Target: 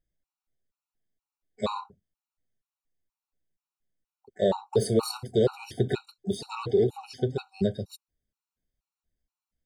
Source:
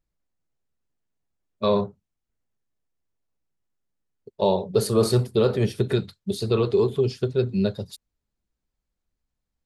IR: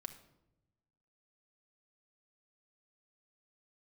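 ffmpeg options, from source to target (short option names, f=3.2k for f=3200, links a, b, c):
-filter_complex "[0:a]asplit=2[a][b];[b]asetrate=88200,aresample=44100,atempo=0.5,volume=-17dB[c];[a][c]amix=inputs=2:normalize=0,afftfilt=real='re*gt(sin(2*PI*2.1*pts/sr)*(1-2*mod(floor(b*sr/1024/750),2)),0)':imag='im*gt(sin(2*PI*2.1*pts/sr)*(1-2*mod(floor(b*sr/1024/750),2)),0)':win_size=1024:overlap=0.75,volume=-2dB"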